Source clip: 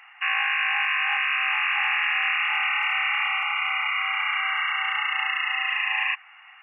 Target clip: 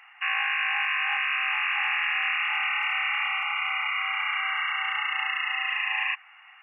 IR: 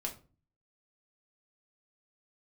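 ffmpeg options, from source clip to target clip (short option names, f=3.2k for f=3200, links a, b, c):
-filter_complex "[0:a]asettb=1/sr,asplit=3[a][b][c];[a]atrim=end=1.404[d];[b]atrim=start=1.4:end=3.47,asetpts=PTS-STARTPTS,afade=t=in:d=0.004:c=qsin,afade=t=out:st=2.066:d=0.004:c=qsin,highpass=f=340:p=1[e];[c]atrim=start=3.466[f];[d][e]acrossfade=d=0.004:c1=hsin:c2=qsin[g];[g][f]acrossfade=d=0.004:c1=qsin:c2=hsin,volume=-2.5dB"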